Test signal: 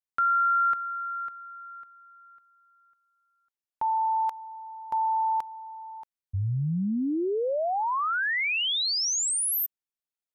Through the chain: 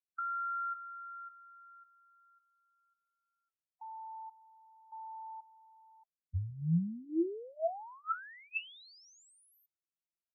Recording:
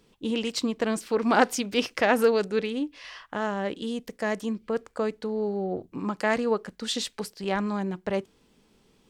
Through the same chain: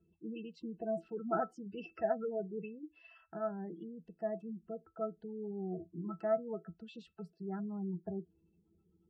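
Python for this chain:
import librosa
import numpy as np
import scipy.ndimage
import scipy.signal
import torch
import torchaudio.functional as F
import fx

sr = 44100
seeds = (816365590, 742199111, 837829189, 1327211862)

y = fx.spec_gate(x, sr, threshold_db=-15, keep='strong')
y = fx.octave_resonator(y, sr, note='E', decay_s=0.13)
y = y * 10.0 ** (1.0 / 20.0)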